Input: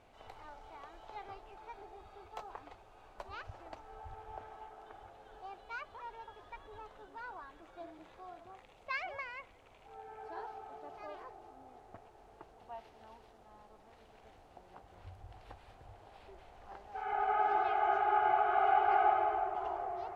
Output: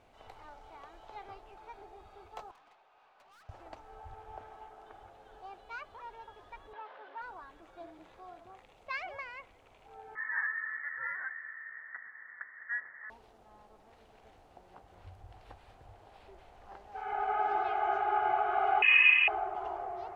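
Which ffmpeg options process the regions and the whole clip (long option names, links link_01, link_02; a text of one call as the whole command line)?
ffmpeg -i in.wav -filter_complex "[0:a]asettb=1/sr,asplit=3[link_01][link_02][link_03];[link_01]atrim=end=2.514[link_04];[link_02]atrim=start=2.51:end=3.49,asetpts=PTS-STARTPTS,afade=type=in:duration=0.004:curve=qsin,afade=type=out:start_time=0.976:duration=0.004:curve=qsin,highpass=730,lowpass=3600,aeval=exprs='(tanh(891*val(0)+0.1)-tanh(0.1))/891':channel_layout=same[link_05];[link_03]atrim=start=3.486[link_06];[link_04][link_05]acrossfade=duration=0.004:curve1=hsin:curve2=qsin[link_07];[link_07][link_06]acrossfade=duration=0.004:curve1=qsin:curve2=hsin,asettb=1/sr,asplit=3[link_08][link_09][link_10];[link_08]atrim=end=6.734[link_11];[link_09]atrim=start=6.73:end=7.22,asetpts=PTS-STARTPTS,afade=type=in:duration=0.004:curve=qsin,afade=type=out:start_time=0.486:duration=0.004:curve=qsin,aeval=exprs='val(0)+0.5*0.002*sgn(val(0))':channel_layout=same,highpass=500,equalizer=frequency=570:width_type=q:width=4:gain=5,equalizer=frequency=960:width_type=q:width=4:gain=4,equalizer=frequency=1600:width_type=q:width=4:gain=6,lowpass=frequency=3500:width=0.5412,lowpass=frequency=3500:width=1.3066[link_12];[link_10]atrim=start=7.216[link_13];[link_11][link_12]acrossfade=duration=0.004:curve1=hsin:curve2=qsin[link_14];[link_14][link_13]acrossfade=duration=0.004:curve1=qsin:curve2=hsin,asettb=1/sr,asplit=3[link_15][link_16][link_17];[link_15]atrim=end=10.154[link_18];[link_16]atrim=start=10.15:end=13.1,asetpts=PTS-STARTPTS,afade=type=in:duration=0.004:curve=qsin,afade=type=out:start_time=2.946:duration=0.004:curve=qsin,highpass=frequency=630:width=0.5412,highpass=frequency=630:width=1.3066,equalizer=frequency=910:width=0.68:gain=13,lowpass=frequency=2200:width_type=q:width=0.5098,lowpass=frequency=2200:width_type=q:width=0.6013,lowpass=frequency=2200:width_type=q:width=0.9,lowpass=frequency=2200:width_type=q:width=2.563,afreqshift=-2600[link_19];[link_17]atrim=start=13.096[link_20];[link_18][link_19]acrossfade=duration=0.004:curve1=hsin:curve2=qsin[link_21];[link_21][link_20]acrossfade=duration=0.004:curve1=qsin:curve2=hsin,asettb=1/sr,asplit=3[link_22][link_23][link_24];[link_22]atrim=end=18.824[link_25];[link_23]atrim=start=18.82:end=19.28,asetpts=PTS-STARTPTS,afade=type=in:duration=0.004:curve=qsin,afade=type=out:start_time=0.456:duration=0.004:curve=qsin,acontrast=51,lowpass=frequency=2800:width_type=q:width=0.5098,lowpass=frequency=2800:width_type=q:width=0.6013,lowpass=frequency=2800:width_type=q:width=0.9,lowpass=frequency=2800:width_type=q:width=2.563,afreqshift=-3300[link_26];[link_24]atrim=start=19.276[link_27];[link_25][link_26]acrossfade=duration=0.004:curve1=hsin:curve2=qsin[link_28];[link_28][link_27]acrossfade=duration=0.004:curve1=qsin:curve2=hsin" out.wav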